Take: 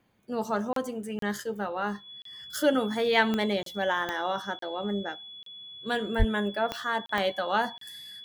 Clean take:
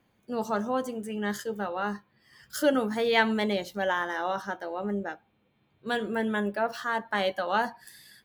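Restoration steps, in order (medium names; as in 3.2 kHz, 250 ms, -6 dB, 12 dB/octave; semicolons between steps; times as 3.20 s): de-click; band-stop 3.4 kHz, Q 30; 6.18–6.30 s: high-pass 140 Hz 24 dB/octave; interpolate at 0.73/1.19/2.22/3.63/4.59/5.43/7.06/7.78 s, 33 ms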